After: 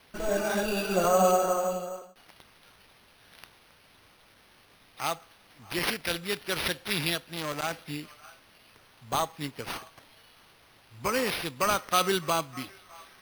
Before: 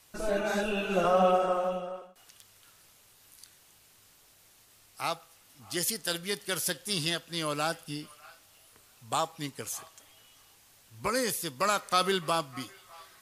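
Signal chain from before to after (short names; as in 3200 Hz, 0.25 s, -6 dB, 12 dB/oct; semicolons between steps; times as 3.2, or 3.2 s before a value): careless resampling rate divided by 6×, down none, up hold; 7.18–7.73 core saturation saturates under 1700 Hz; gain +1.5 dB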